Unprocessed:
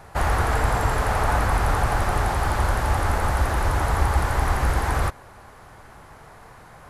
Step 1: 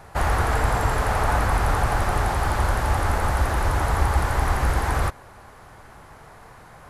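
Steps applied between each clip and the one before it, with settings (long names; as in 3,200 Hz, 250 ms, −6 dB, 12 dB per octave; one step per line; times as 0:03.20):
no processing that can be heard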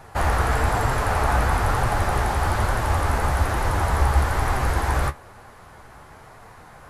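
flanger 1.1 Hz, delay 7.3 ms, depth 9.2 ms, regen +47%
level +4.5 dB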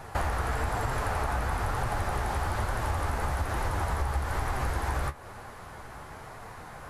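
downward compressor 6 to 1, threshold −28 dBFS, peak gain reduction 14 dB
level +1.5 dB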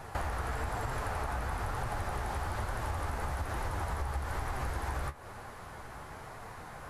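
downward compressor 1.5 to 1, threshold −35 dBFS, peak gain reduction 4 dB
level −2 dB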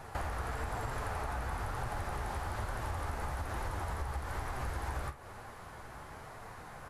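double-tracking delay 49 ms −13 dB
level −2.5 dB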